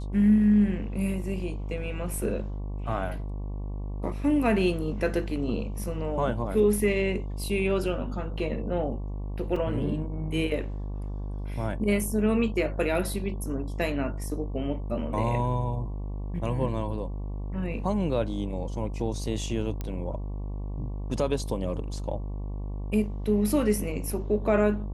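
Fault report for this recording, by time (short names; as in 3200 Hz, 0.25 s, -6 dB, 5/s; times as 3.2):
buzz 50 Hz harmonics 23 -33 dBFS
9.56 gap 3.5 ms
19.81 pop -19 dBFS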